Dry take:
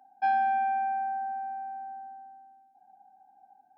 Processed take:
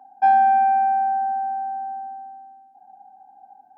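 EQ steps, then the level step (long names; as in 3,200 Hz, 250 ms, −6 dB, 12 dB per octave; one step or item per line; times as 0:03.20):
octave-band graphic EQ 125/250/500/1,000 Hz +7/+6/+7/+11 dB
0.0 dB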